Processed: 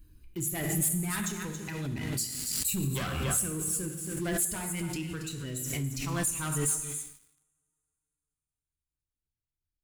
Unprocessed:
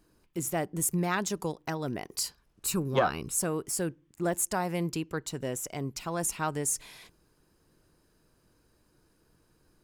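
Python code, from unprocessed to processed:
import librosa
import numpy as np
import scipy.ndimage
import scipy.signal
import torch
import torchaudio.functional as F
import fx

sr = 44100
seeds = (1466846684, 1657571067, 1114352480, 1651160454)

y = fx.bin_expand(x, sr, power=1.5)
y = fx.peak_eq(y, sr, hz=5200.0, db=-11.0, octaves=0.55)
y = y + 10.0 ** (-11.0 / 20.0) * np.pad(y, (int(277 * sr / 1000.0), 0))[:len(y)]
y = fx.rev_double_slope(y, sr, seeds[0], early_s=0.84, late_s=3.1, knee_db=-18, drr_db=4.0)
y = fx.leveller(y, sr, passes=3)
y = fx.tone_stack(y, sr, knobs='6-0-2')
y = fx.hum_notches(y, sr, base_hz=50, count=7)
y = fx.pre_swell(y, sr, db_per_s=27.0)
y = y * 10.0 ** (8.5 / 20.0)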